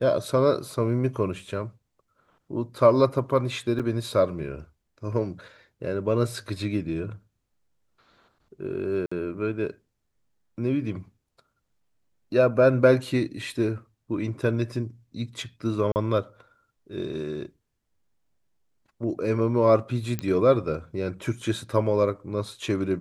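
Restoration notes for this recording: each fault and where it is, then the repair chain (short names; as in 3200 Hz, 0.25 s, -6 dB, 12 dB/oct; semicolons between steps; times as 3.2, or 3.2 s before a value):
3.79–3.8 gap 6.6 ms
9.06–9.12 gap 55 ms
15.92–15.96 gap 39 ms
20.19 pop -14 dBFS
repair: de-click; interpolate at 3.79, 6.6 ms; interpolate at 9.06, 55 ms; interpolate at 15.92, 39 ms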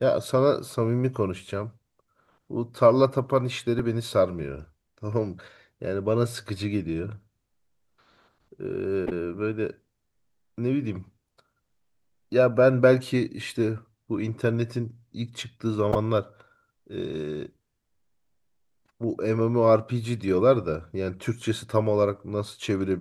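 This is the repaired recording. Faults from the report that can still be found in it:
none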